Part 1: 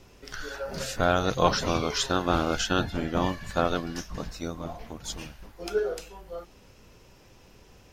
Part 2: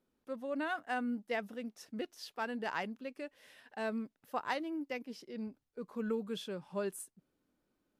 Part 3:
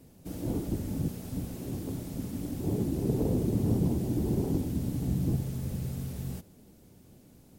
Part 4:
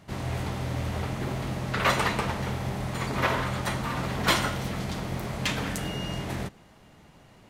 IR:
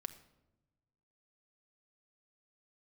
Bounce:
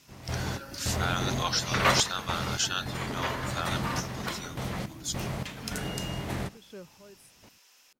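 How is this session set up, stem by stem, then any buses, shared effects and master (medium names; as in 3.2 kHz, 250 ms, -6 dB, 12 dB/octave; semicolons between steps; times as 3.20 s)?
-4.5 dB, 0.00 s, no send, high-pass 1.1 kHz 12 dB/octave; treble shelf 3.3 kHz +10.5 dB
-3.0 dB, 0.25 s, no send, peak limiter -32.5 dBFS, peak gain reduction 10.5 dB; square tremolo 0.93 Hz, depth 65%, duty 25%
-15.5 dB, 0.00 s, no send, none
+0.5 dB, 0.00 s, no send, random-step tremolo, depth 95%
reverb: none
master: none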